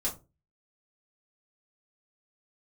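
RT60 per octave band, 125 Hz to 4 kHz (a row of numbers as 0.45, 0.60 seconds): 0.45, 0.35, 0.30, 0.25, 0.20, 0.15 seconds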